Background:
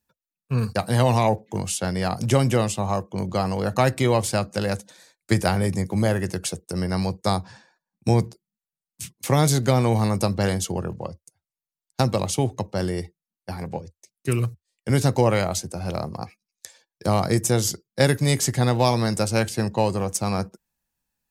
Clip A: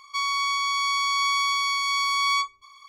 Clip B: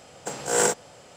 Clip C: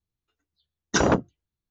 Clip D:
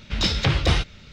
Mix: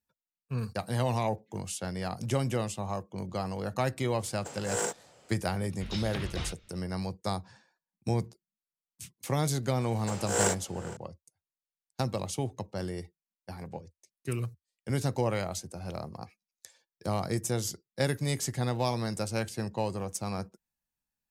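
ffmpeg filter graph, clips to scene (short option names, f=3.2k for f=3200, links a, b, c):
-filter_complex "[2:a]asplit=2[a][b];[0:a]volume=-10dB[c];[b]asplit=2[d][e];[e]adelay=460.6,volume=-16dB,highshelf=f=4k:g=-10.4[f];[d][f]amix=inputs=2:normalize=0[g];[a]atrim=end=1.16,asetpts=PTS-STARTPTS,volume=-10dB,afade=t=in:d=0.004:c=hsin,afade=t=out:st=1.156:d=0.004:c=hsin,adelay=4190[h];[4:a]atrim=end=1.12,asetpts=PTS-STARTPTS,volume=-16dB,afade=t=in:d=0.004:c=hsin,afade=t=out:st=1.116:d=0.004:c=hsin,adelay=5700[i];[g]atrim=end=1.16,asetpts=PTS-STARTPTS,volume=-5.5dB,afade=t=in:d=0.004:c=hsin,afade=t=out:st=1.156:d=0.004:c=hsin,adelay=9810[j];[c][h][i][j]amix=inputs=4:normalize=0"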